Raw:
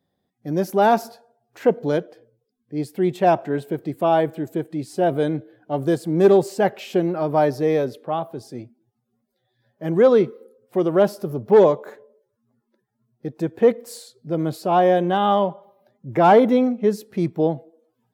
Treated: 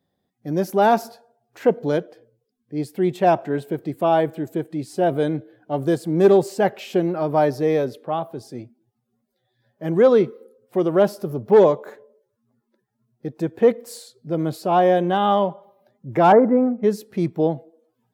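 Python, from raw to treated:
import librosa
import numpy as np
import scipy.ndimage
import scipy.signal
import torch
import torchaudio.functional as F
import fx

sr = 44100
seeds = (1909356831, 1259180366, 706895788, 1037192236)

y = fx.steep_lowpass(x, sr, hz=1800.0, slope=36, at=(16.32, 16.83))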